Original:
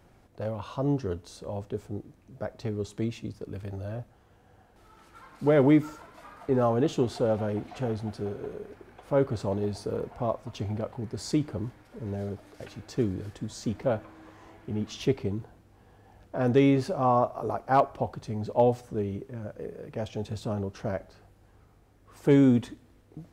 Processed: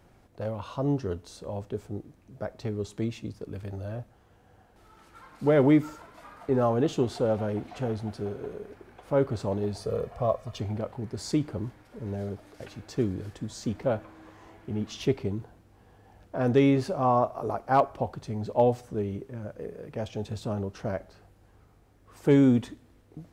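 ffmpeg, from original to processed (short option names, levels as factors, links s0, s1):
-filter_complex "[0:a]asettb=1/sr,asplit=3[s0][s1][s2];[s0]atrim=end=9.804[s3];[s1]atrim=start=9.8:end=10.6,asetpts=PTS-STARTPTS,afade=t=in:d=0.004:c=qsin,afade=t=out:st=0.796:d=0.004:c=qsin,aecho=1:1:1.7:0.65,atrim=end_sample=35280[s4];[s2]atrim=start=10.596[s5];[s3][s4]acrossfade=d=0.004:c1=hsin:c2=qsin[s6];[s6][s5]acrossfade=d=0.004:c1=qsin:c2=hsin"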